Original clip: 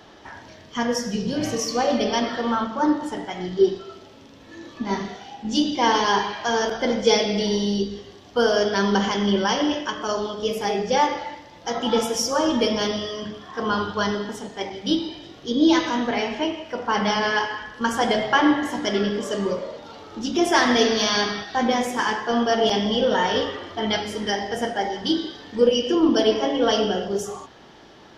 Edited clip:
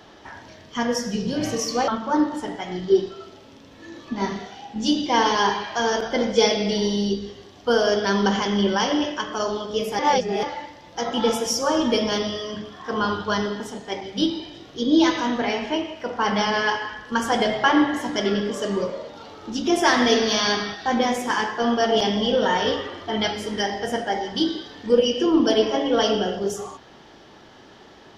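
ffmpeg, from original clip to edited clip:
-filter_complex "[0:a]asplit=4[s0][s1][s2][s3];[s0]atrim=end=1.882[s4];[s1]atrim=start=2.568:end=10.682[s5];[s2]atrim=start=10.678:end=11.122,asetpts=PTS-STARTPTS,areverse[s6];[s3]atrim=start=11.118[s7];[s4][s5]acrossfade=d=0.004:c1=hsin:c2=hsin[s8];[s8][s6]acrossfade=d=0.004:c1=hsin:c2=hsin[s9];[s9][s7]acrossfade=d=0.004:c1=hsin:c2=hsin"

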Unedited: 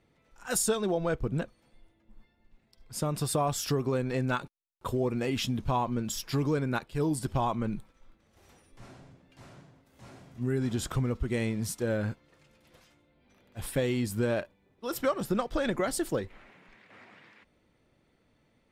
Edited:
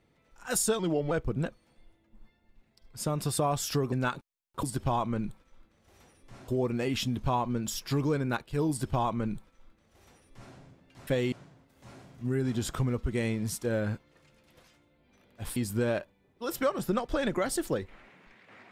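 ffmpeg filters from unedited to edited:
-filter_complex "[0:a]asplit=9[s0][s1][s2][s3][s4][s5][s6][s7][s8];[s0]atrim=end=0.794[s9];[s1]atrim=start=0.79:end=1.07,asetpts=PTS-STARTPTS,asetrate=38367,aresample=44100,atrim=end_sample=14193,asetpts=PTS-STARTPTS[s10];[s2]atrim=start=1.066:end=3.882[s11];[s3]atrim=start=4.188:end=4.902[s12];[s4]atrim=start=7.118:end=8.972[s13];[s5]atrim=start=4.898:end=9.492[s14];[s6]atrim=start=13.728:end=13.982[s15];[s7]atrim=start=9.488:end=13.732[s16];[s8]atrim=start=13.978[s17];[s9][s10]acrossfade=d=0.004:c1=hsin:c2=hsin[s18];[s18][s11]acrossfade=d=0.004:c1=hsin:c2=hsin[s19];[s19][s12]acrossfade=d=0.004:c1=hsin:c2=hsin[s20];[s20][s13]acrossfade=d=0.004:c1=hsin:c2=hsin[s21];[s21][s14]acrossfade=d=0.004:c1=hsin:c2=hsin[s22];[s22][s15]acrossfade=d=0.004:c1=hsin:c2=hsin[s23];[s23][s16]acrossfade=d=0.004:c1=hsin:c2=hsin[s24];[s24][s17]acrossfade=d=0.004:c1=hsin:c2=hsin"

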